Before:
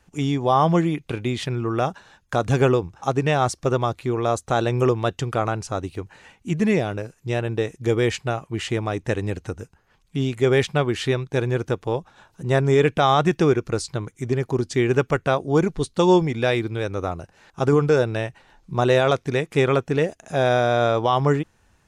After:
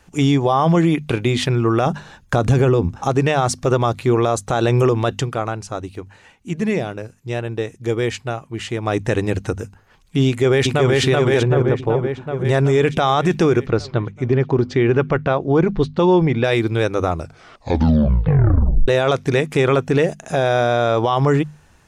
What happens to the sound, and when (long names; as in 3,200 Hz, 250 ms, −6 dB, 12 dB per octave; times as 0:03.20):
0:01.86–0:03.09: low-shelf EQ 380 Hz +7 dB
0:05.17–0:08.94: duck −8 dB, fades 0.13 s
0:10.27–0:10.93: delay throw 380 ms, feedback 65%, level −1 dB
0:11.43–0:12.45: low-pass filter 1,000 Hz 6 dB per octave
0:13.66–0:16.44: high-frequency loss of the air 220 metres
0:17.11: tape stop 1.77 s
whole clip: mains-hum notches 50/100/150/200/250 Hz; de-essing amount 45%; boost into a limiter +14.5 dB; level −6.5 dB